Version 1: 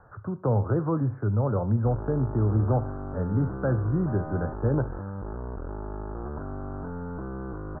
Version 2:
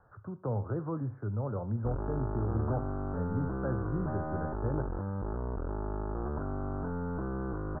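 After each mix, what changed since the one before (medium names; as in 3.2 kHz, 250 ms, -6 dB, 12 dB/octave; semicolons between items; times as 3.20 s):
speech -9.0 dB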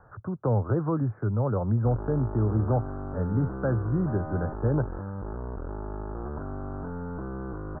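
speech +10.0 dB; reverb: off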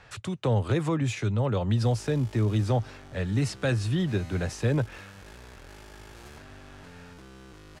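background: add pre-emphasis filter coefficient 0.8; master: remove steep low-pass 1.5 kHz 72 dB/octave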